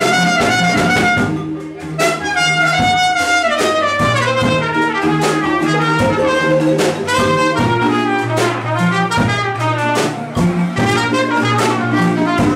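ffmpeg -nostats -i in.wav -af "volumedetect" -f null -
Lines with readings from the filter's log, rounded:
mean_volume: -14.5 dB
max_volume: -1.1 dB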